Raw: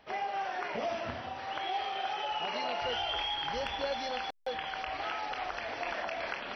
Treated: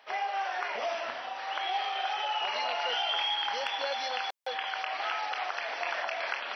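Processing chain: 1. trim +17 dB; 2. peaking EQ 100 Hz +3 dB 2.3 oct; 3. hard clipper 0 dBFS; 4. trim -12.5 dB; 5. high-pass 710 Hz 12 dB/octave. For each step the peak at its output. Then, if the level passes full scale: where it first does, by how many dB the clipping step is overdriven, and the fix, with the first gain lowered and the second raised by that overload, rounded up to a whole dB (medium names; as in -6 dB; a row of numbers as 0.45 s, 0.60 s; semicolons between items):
-6.5 dBFS, -6.0 dBFS, -6.0 dBFS, -18.5 dBFS, -17.0 dBFS; nothing clips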